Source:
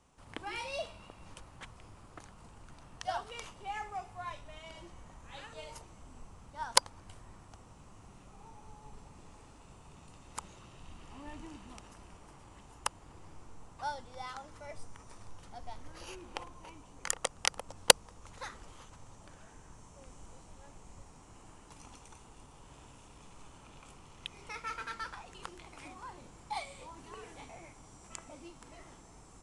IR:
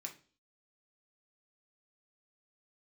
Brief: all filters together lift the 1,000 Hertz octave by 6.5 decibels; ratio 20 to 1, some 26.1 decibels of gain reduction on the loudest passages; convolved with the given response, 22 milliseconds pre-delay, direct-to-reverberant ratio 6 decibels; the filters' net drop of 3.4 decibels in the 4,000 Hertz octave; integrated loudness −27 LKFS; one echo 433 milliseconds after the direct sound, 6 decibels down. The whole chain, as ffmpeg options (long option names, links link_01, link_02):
-filter_complex "[0:a]equalizer=frequency=1000:width_type=o:gain=8,equalizer=frequency=4000:width_type=o:gain=-5,acompressor=threshold=-42dB:ratio=20,aecho=1:1:433:0.501,asplit=2[link_01][link_02];[1:a]atrim=start_sample=2205,adelay=22[link_03];[link_02][link_03]afir=irnorm=-1:irlink=0,volume=-3dB[link_04];[link_01][link_04]amix=inputs=2:normalize=0,volume=21.5dB"